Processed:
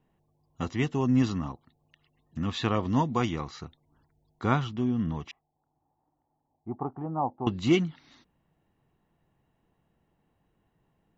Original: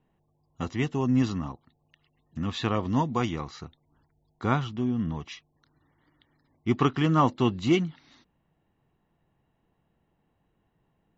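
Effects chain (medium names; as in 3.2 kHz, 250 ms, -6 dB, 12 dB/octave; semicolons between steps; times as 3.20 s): 5.31–7.47 s: four-pole ladder low-pass 860 Hz, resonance 75%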